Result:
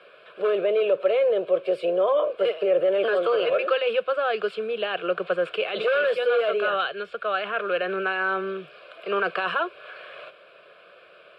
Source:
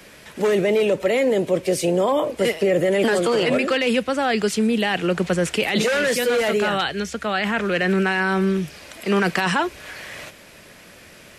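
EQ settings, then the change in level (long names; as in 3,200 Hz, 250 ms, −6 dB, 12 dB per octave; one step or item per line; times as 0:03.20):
band-pass filter 440–2,100 Hz
phaser with its sweep stopped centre 1,300 Hz, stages 8
+1.5 dB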